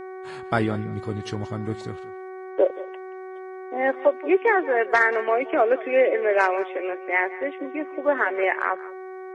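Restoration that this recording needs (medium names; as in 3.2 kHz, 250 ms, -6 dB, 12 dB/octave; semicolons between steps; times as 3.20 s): de-hum 375 Hz, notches 6; inverse comb 178 ms -18 dB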